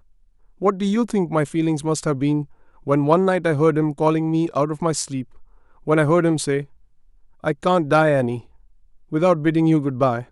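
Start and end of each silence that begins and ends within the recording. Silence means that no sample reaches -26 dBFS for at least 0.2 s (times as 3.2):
2.42–2.87
5.22–5.87
6.62–7.44
8.38–9.13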